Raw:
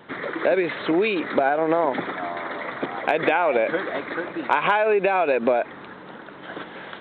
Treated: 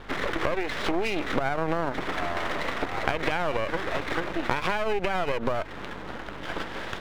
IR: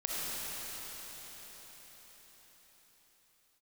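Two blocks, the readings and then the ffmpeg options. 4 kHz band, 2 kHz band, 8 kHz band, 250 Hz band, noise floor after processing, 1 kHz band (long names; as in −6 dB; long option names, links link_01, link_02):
+1.5 dB, −4.0 dB, can't be measured, −5.0 dB, −38 dBFS, −6.0 dB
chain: -af "acompressor=threshold=-27dB:ratio=6,aeval=exprs='max(val(0),0)':channel_layout=same,aeval=exprs='val(0)+0.002*(sin(2*PI*50*n/s)+sin(2*PI*2*50*n/s)/2+sin(2*PI*3*50*n/s)/3+sin(2*PI*4*50*n/s)/4+sin(2*PI*5*50*n/s)/5)':channel_layout=same,volume=6.5dB"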